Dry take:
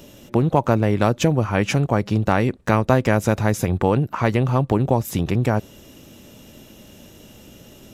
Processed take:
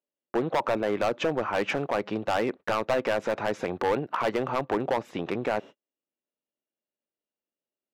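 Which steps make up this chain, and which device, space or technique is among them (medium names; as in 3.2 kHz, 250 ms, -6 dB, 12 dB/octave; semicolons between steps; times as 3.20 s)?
walkie-talkie (band-pass 400–2400 Hz; hard clipper -19.5 dBFS, distortion -6 dB; gate -40 dBFS, range -46 dB)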